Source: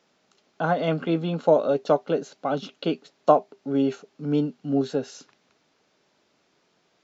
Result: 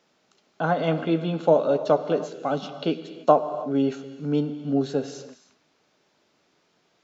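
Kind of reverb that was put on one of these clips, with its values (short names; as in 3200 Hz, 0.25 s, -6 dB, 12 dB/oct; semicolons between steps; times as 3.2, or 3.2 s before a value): non-linear reverb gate 0.35 s flat, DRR 10.5 dB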